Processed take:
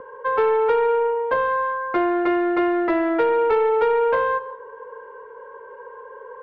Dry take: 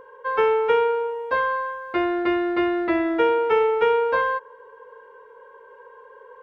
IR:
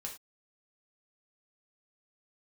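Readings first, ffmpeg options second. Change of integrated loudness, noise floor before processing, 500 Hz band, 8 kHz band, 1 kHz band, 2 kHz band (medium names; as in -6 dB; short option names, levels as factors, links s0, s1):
+1.5 dB, -48 dBFS, +2.0 dB, no reading, +2.0 dB, -0.5 dB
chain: -filter_complex "[0:a]lowpass=1800,acrossover=split=340|710[s0][s1][s2];[s0]acompressor=threshold=0.00891:ratio=4[s3];[s1]acompressor=threshold=0.0562:ratio=4[s4];[s2]acompressor=threshold=0.0316:ratio=4[s5];[s3][s4][s5]amix=inputs=3:normalize=0,asoftclip=type=tanh:threshold=0.119,asplit=2[s6][s7];[1:a]atrim=start_sample=2205,adelay=138[s8];[s7][s8]afir=irnorm=-1:irlink=0,volume=0.168[s9];[s6][s9]amix=inputs=2:normalize=0,volume=2.24"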